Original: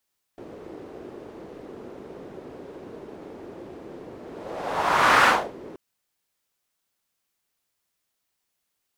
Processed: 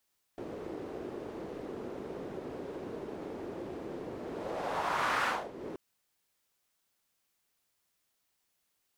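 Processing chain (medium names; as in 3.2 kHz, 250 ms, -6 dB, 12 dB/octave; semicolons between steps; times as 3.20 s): compression 2.5:1, threshold -35 dBFS, peak gain reduction 14 dB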